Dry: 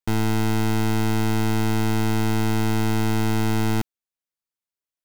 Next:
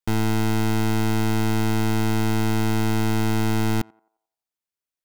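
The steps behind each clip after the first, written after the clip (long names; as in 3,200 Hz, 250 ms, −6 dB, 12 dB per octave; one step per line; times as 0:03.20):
feedback echo with a band-pass in the loop 88 ms, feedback 45%, band-pass 730 Hz, level −22 dB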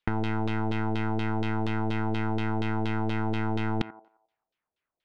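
compressor whose output falls as the input rises −25 dBFS, ratio −0.5
auto-filter low-pass saw down 4.2 Hz 510–3,600 Hz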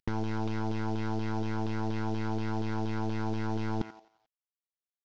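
variable-slope delta modulation 32 kbit/s
level −3 dB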